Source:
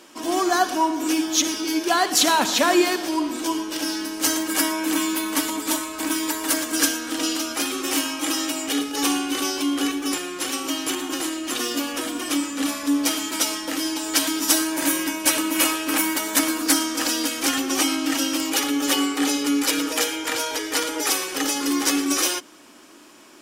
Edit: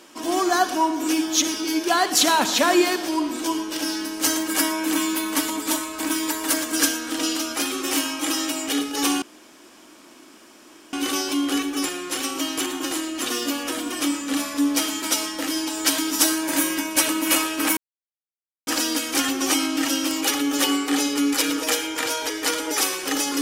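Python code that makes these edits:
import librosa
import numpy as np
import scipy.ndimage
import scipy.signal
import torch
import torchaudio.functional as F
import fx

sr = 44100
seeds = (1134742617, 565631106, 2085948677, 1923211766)

y = fx.edit(x, sr, fx.insert_room_tone(at_s=9.22, length_s=1.71),
    fx.silence(start_s=16.06, length_s=0.9), tone=tone)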